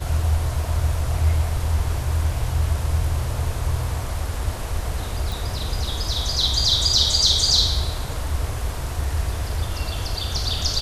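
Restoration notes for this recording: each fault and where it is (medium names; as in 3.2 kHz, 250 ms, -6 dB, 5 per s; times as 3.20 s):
5.32 s: pop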